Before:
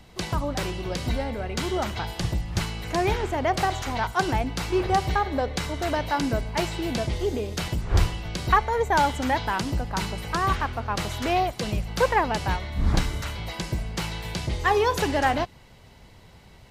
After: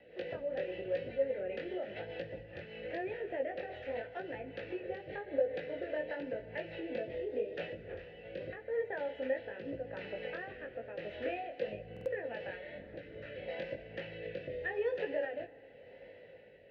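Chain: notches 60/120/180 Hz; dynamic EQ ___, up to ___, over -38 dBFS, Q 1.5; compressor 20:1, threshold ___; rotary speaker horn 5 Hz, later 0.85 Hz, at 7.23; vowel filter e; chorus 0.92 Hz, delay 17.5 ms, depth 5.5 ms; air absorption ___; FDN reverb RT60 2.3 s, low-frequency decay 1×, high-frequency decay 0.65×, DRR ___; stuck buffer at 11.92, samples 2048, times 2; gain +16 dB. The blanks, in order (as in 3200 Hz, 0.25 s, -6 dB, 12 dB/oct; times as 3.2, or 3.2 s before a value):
110 Hz, +3 dB, -31 dBFS, 330 m, 14.5 dB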